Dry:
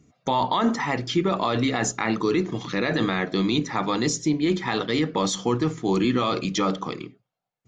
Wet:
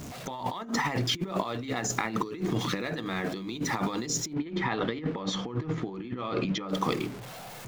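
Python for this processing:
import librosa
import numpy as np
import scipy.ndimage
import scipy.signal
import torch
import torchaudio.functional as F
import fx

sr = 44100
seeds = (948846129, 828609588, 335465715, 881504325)

y = x + 0.5 * 10.0 ** (-37.5 / 20.0) * np.sign(x)
y = fx.lowpass(y, sr, hz=2800.0, slope=12, at=(4.33, 6.69))
y = fx.over_compress(y, sr, threshold_db=-27.0, ratio=-0.5)
y = y * librosa.db_to_amplitude(-3.0)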